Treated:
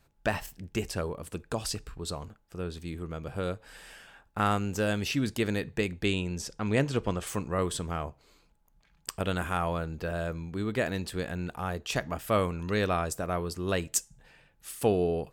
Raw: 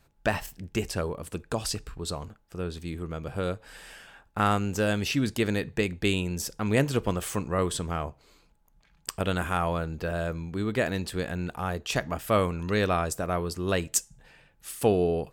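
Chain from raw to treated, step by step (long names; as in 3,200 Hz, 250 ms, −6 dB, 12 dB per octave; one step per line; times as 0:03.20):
0:06.05–0:07.27: low-pass filter 7,600 Hz 12 dB per octave
level −2.5 dB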